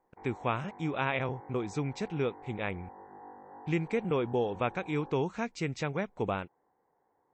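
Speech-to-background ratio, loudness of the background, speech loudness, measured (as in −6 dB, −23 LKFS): 17.0 dB, −50.5 LKFS, −33.5 LKFS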